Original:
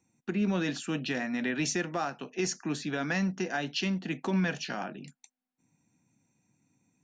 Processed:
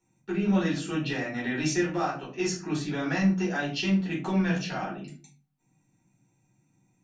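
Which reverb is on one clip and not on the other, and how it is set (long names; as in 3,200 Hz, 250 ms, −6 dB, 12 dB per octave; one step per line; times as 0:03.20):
rectangular room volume 220 cubic metres, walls furnished, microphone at 4.4 metres
level −6.5 dB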